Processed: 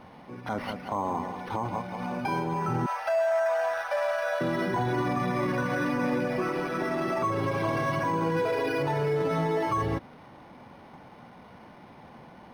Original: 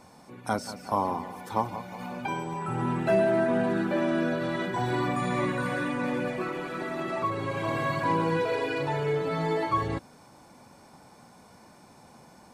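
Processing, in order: 2.86–4.41 steep high-pass 540 Hz 96 dB/oct; limiter -23.5 dBFS, peak gain reduction 11.5 dB; decimation joined by straight lines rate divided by 6×; gain +4.5 dB

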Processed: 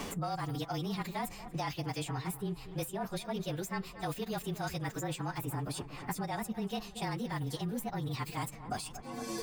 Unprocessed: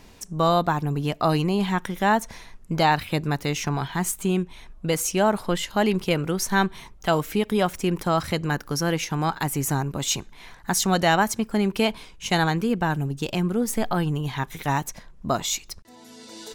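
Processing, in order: inharmonic rescaling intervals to 108%; dynamic EQ 740 Hz, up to +6 dB, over -41 dBFS, Q 4.2; reverse; compressor, threshold -30 dBFS, peak gain reduction 15.5 dB; reverse; darkening echo 0.406 s, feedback 65%, low-pass 3700 Hz, level -18 dB; in parallel at -11 dB: hard clip -35 dBFS, distortion -7 dB; on the sum: time stretch by phase-locked vocoder 0.57×; three-band squash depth 100%; gain -5 dB

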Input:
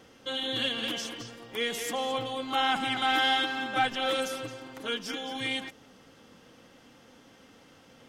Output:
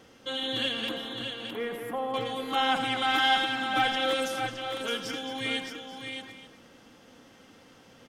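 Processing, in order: 0.89–2.14 EQ curve 1400 Hz 0 dB, 6500 Hz -28 dB, 11000 Hz -8 dB; tapped delay 87/615/874 ms -13/-6.5/-18.5 dB

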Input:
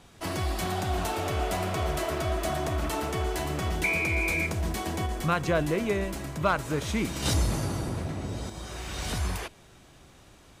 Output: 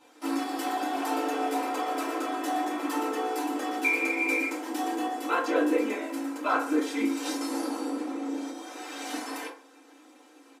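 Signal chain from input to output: comb 3.8 ms, depth 91%; 7.01–7.41 compressor, threshold -24 dBFS, peak gain reduction 5.5 dB; AM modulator 59 Hz, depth 80%; brick-wall FIR high-pass 240 Hz; FDN reverb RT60 0.48 s, low-frequency decay 1×, high-frequency decay 0.45×, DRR -9 dB; gain -8 dB

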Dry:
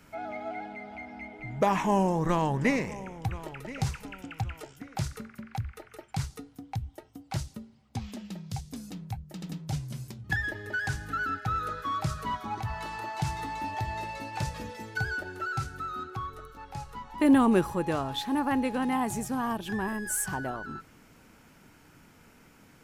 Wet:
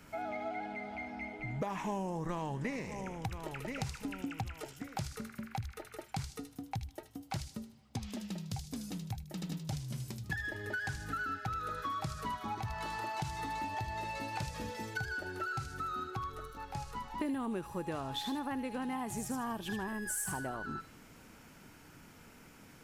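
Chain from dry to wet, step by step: 4.01–4.47 bell 270 Hz +9.5 dB; compressor 6:1, threshold -35 dBFS, peak gain reduction 17.5 dB; thin delay 77 ms, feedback 33%, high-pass 3200 Hz, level -3.5 dB

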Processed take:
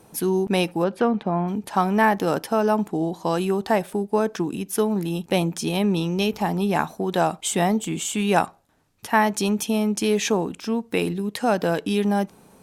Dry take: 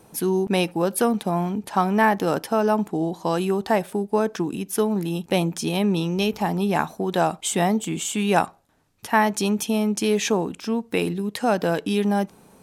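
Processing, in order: 0.83–1.47 LPF 3300 Hz -> 2000 Hz 12 dB/oct; Opus 128 kbps 48000 Hz

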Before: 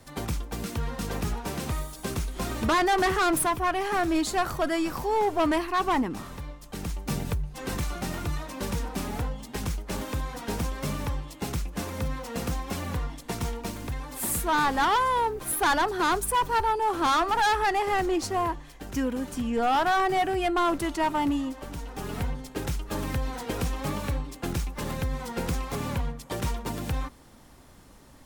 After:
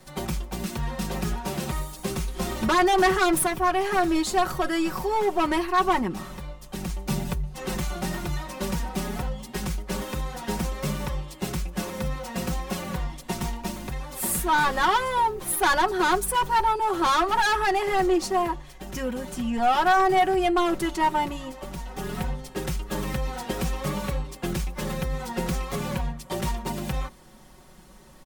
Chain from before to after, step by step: comb 5.4 ms, depth 80%

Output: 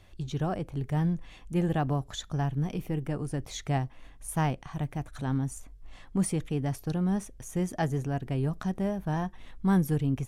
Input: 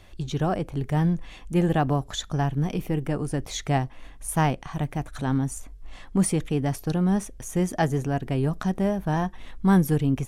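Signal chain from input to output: bell 110 Hz +4 dB 1.1 oct; gain -6.5 dB

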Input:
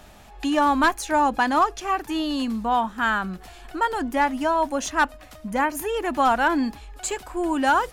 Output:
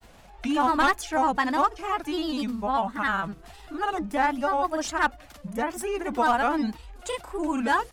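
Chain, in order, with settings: grains 0.1 s, grains 20/s, spray 34 ms, pitch spread up and down by 3 st; gain -2 dB

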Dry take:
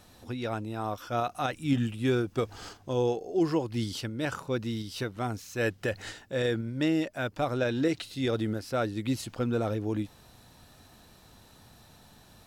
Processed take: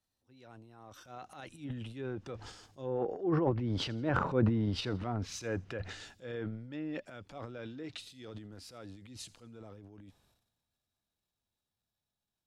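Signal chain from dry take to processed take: Doppler pass-by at 4.38, 14 m/s, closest 8.2 m; treble ducked by the level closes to 1400 Hz, closed at -32 dBFS; transient shaper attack -4 dB, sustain +11 dB; thin delay 83 ms, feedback 49%, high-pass 4100 Hz, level -19.5 dB; three-band expander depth 40%

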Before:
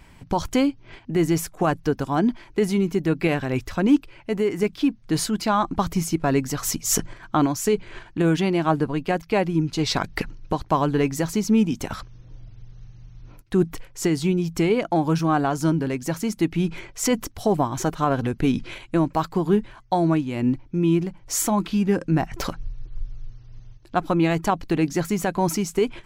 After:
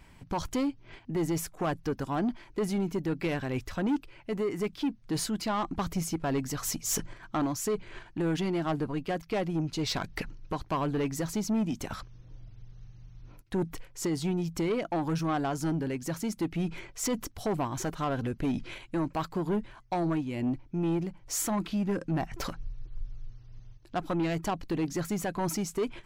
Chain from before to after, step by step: soft clip -18 dBFS, distortion -12 dB; gain -5.5 dB

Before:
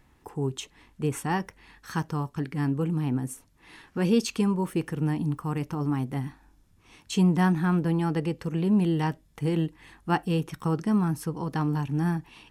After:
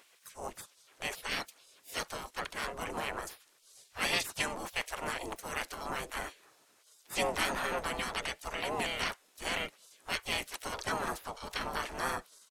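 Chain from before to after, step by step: spectral gate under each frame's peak -25 dB weak; harmoniser -5 st 0 dB, +4 st -16 dB; gain +7.5 dB

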